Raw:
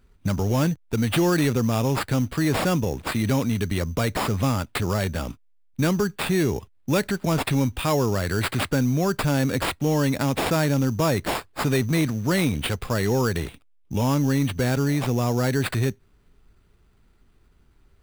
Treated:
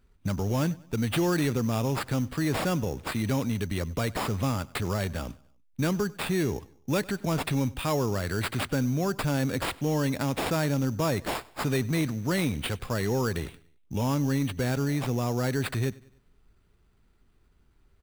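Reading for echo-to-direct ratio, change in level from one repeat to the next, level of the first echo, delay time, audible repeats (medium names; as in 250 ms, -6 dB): -21.5 dB, -6.5 dB, -22.5 dB, 97 ms, 2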